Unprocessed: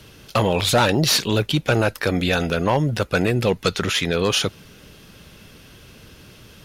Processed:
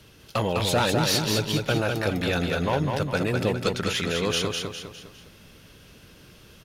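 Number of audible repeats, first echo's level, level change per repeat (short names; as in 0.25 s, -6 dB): 4, -4.0 dB, -7.0 dB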